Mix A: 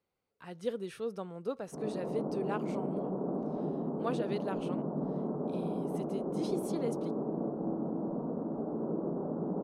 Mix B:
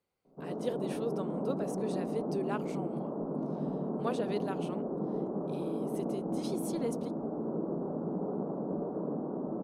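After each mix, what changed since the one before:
background: entry -1.35 s; master: add treble shelf 6.9 kHz +6.5 dB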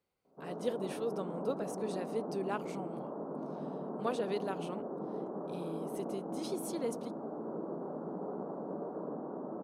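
background: add tilt EQ +3.5 dB/octave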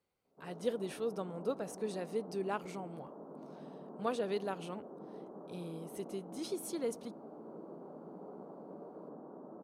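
background -9.0 dB

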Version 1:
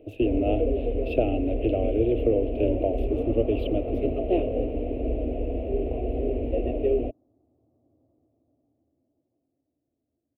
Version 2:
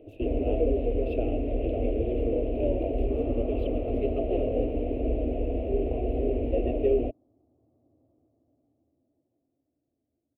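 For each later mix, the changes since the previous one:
speech -9.0 dB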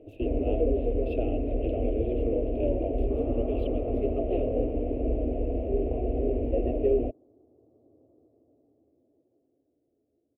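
first sound: add low-pass 1.4 kHz 6 dB/octave; second sound: add peaking EQ 430 Hz +13.5 dB 0.82 oct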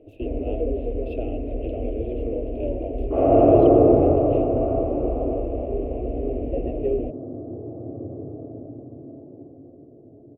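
second sound +7.0 dB; reverb: on, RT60 1.1 s

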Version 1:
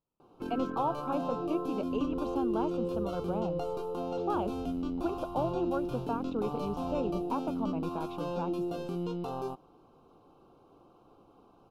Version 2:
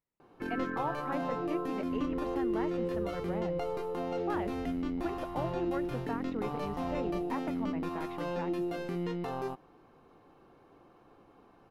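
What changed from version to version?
speech -4.5 dB; master: remove Butterworth band-stop 1.9 kHz, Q 1.5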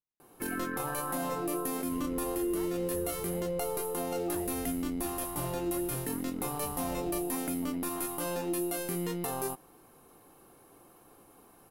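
speech -11.5 dB; master: remove distance through air 210 m

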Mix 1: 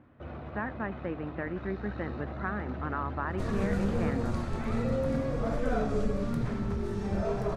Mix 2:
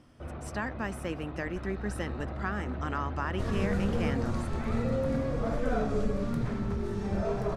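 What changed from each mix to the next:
speech: remove low-pass 2 kHz 24 dB/octave; first sound: remove high-pass 69 Hz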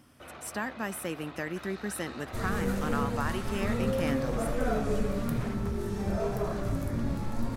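first sound: add tilt EQ +4.5 dB/octave; second sound: entry -1.05 s; master: remove distance through air 71 m

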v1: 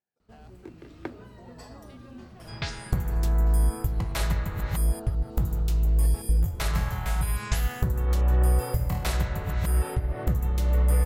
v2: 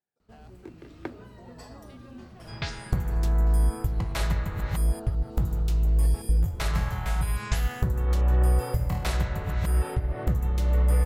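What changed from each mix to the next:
second sound: add treble shelf 9.7 kHz -7.5 dB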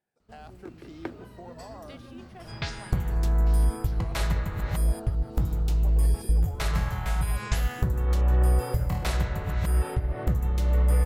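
speech +9.0 dB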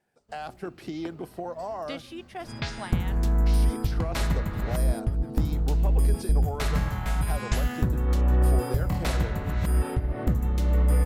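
speech +11.0 dB; first sound -5.5 dB; second sound: add peaking EQ 250 Hz +11.5 dB 0.46 oct

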